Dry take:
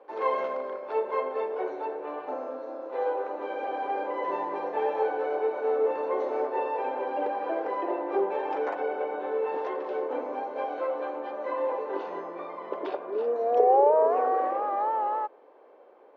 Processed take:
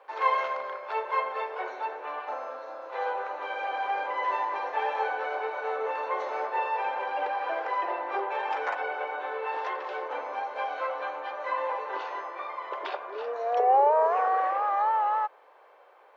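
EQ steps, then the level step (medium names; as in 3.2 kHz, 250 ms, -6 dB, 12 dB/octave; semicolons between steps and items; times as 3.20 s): high-pass 1.1 kHz 12 dB/octave; +8.0 dB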